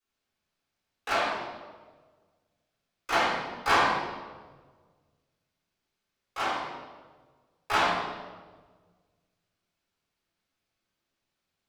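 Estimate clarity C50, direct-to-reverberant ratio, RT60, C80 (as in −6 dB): −1.5 dB, −14.0 dB, 1.5 s, 1.5 dB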